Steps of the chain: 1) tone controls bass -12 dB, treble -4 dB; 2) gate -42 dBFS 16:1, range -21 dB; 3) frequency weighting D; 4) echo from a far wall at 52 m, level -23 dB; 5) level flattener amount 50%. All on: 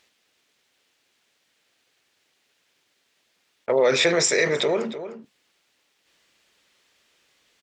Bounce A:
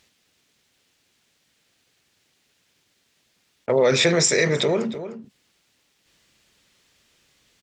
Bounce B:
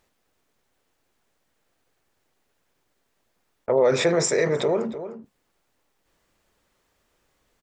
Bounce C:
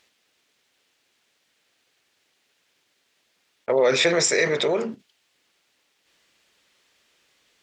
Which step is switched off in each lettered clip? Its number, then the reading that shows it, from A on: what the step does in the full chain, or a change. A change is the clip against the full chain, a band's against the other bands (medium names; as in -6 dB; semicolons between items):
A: 1, 125 Hz band +8.0 dB; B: 3, 4 kHz band -7.5 dB; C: 4, momentary loudness spread change -6 LU